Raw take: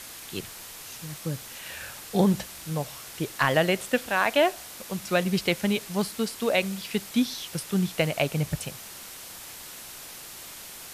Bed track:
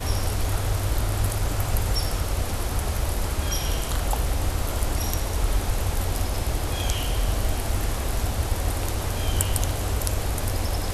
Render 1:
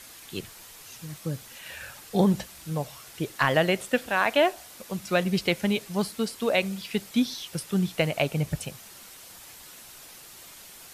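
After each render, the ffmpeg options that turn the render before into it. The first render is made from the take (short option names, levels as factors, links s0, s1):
-af "afftdn=nr=6:nf=-43"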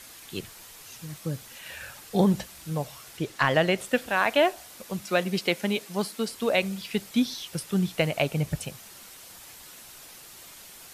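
-filter_complex "[0:a]asettb=1/sr,asplit=3[s0][s1][s2];[s0]atrim=end=3.174[s3];[s1]atrim=start=3.17:end=3.78,asetpts=PTS-STARTPTS,afade=t=in:d=0.004:c=qsin,afade=t=out:st=0.606:d=0.004:c=qsin,acrossover=split=8200[s4][s5];[s5]acompressor=threshold=0.00178:ratio=4:attack=1:release=60[s6];[s4][s6]amix=inputs=2:normalize=0[s7];[s2]atrim=start=3.776[s8];[s3][s7]acrossfade=d=0.004:c1=hsin:c2=qsin[s9];[s9][s8]acrossfade=d=0.004:c1=qsin:c2=hsin,asettb=1/sr,asplit=3[s10][s11][s12];[s10]atrim=end=5.034[s13];[s11]atrim=start=5.03:end=6.28,asetpts=PTS-STARTPTS,afade=t=in:d=0.004:c=qsin,afade=t=out:st=1.246:d=0.004:c=qsin,highpass=200[s14];[s12]atrim=start=6.276[s15];[s13][s14]acrossfade=d=0.004:c1=hsin:c2=qsin[s16];[s16][s15]acrossfade=d=0.004:c1=qsin:c2=hsin"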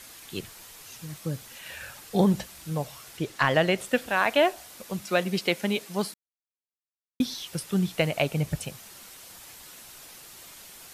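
-filter_complex "[0:a]asplit=3[s0][s1][s2];[s0]atrim=end=6.14,asetpts=PTS-STARTPTS,afade=t=out:st=6.136:d=0.004:c=hsin[s3];[s1]atrim=start=6.14:end=7.2,asetpts=PTS-STARTPTS,volume=0[s4];[s2]atrim=start=7.2,asetpts=PTS-STARTPTS,afade=t=in:d=0.004:c=hsin[s5];[s3][s4][s5]concat=n=3:v=0:a=1"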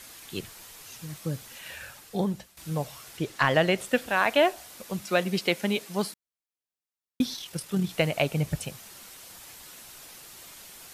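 -filter_complex "[0:a]asettb=1/sr,asplit=3[s0][s1][s2];[s0]atrim=end=7.364[s3];[s1]atrim=start=7.36:end=7.89,asetpts=PTS-STARTPTS,afade=t=in:d=0.004:c=qsin,afade=t=out:st=0.526:d=0.004:c=qsin,tremolo=f=39:d=0.4[s4];[s2]atrim=start=7.886[s5];[s3][s4]acrossfade=d=0.004:c1=hsin:c2=qsin[s6];[s6][s5]acrossfade=d=0.004:c1=qsin:c2=hsin,asplit=2[s7][s8];[s7]atrim=end=2.57,asetpts=PTS-STARTPTS,afade=t=out:st=1.65:d=0.92:silence=0.188365[s9];[s8]atrim=start=2.57,asetpts=PTS-STARTPTS,afade=t=in:d=0.004:c=hsin:silence=0.188365[s10];[s9][s10]concat=n=2:v=0:a=1"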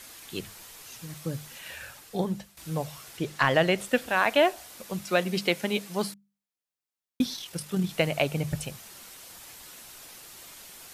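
-af "bandreject=f=50:t=h:w=6,bandreject=f=100:t=h:w=6,bandreject=f=150:t=h:w=6,bandreject=f=200:t=h:w=6"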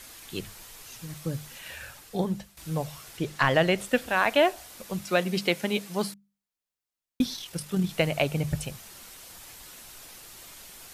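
-af "lowshelf=f=63:g=10.5"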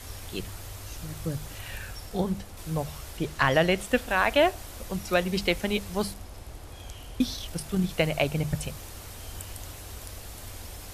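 -filter_complex "[1:a]volume=0.141[s0];[0:a][s0]amix=inputs=2:normalize=0"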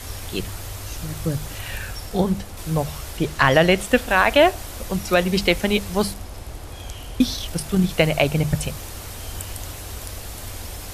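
-af "volume=2.37,alimiter=limit=0.708:level=0:latency=1"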